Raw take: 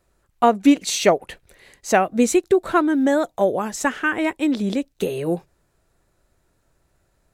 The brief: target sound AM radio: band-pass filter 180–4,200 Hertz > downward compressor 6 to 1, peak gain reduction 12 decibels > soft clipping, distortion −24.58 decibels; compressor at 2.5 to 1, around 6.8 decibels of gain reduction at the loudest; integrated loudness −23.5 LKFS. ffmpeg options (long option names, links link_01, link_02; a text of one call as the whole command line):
ffmpeg -i in.wav -af "acompressor=threshold=-20dB:ratio=2.5,highpass=180,lowpass=4200,acompressor=threshold=-28dB:ratio=6,asoftclip=threshold=-18.5dB,volume=10dB" out.wav